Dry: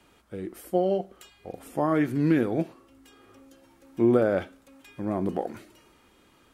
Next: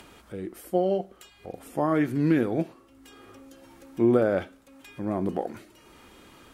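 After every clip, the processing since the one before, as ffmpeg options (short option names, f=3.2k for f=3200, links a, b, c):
-af "acompressor=mode=upward:threshold=-42dB:ratio=2.5"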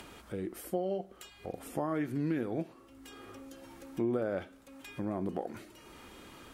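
-af "acompressor=threshold=-34dB:ratio=2.5"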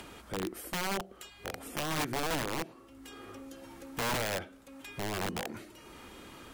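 -af "aeval=exprs='(mod(28.2*val(0)+1,2)-1)/28.2':c=same,volume=2dB"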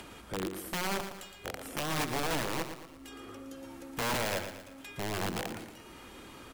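-af "aecho=1:1:115|230|345|460|575:0.355|0.16|0.0718|0.0323|0.0145"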